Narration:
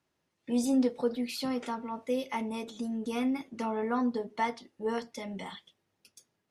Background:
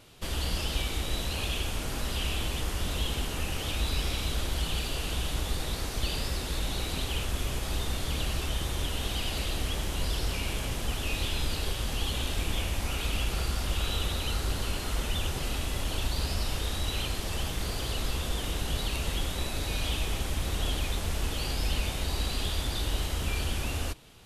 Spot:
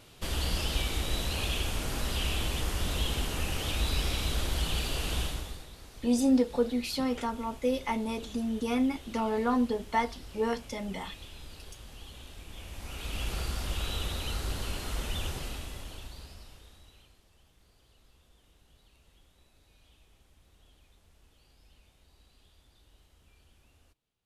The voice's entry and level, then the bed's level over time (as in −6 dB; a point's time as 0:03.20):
5.55 s, +2.5 dB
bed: 0:05.22 0 dB
0:05.70 −16.5 dB
0:12.46 −16.5 dB
0:13.28 −3.5 dB
0:15.30 −3.5 dB
0:17.31 −32 dB